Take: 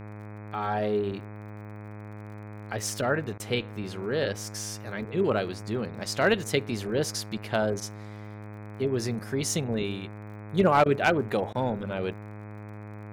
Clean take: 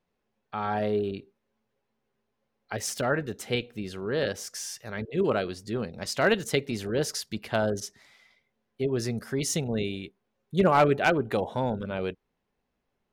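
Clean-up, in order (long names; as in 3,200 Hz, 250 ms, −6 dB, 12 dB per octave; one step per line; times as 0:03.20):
click removal
hum removal 104.9 Hz, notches 24
repair the gap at 0:03.38/0:10.84/0:11.53, 17 ms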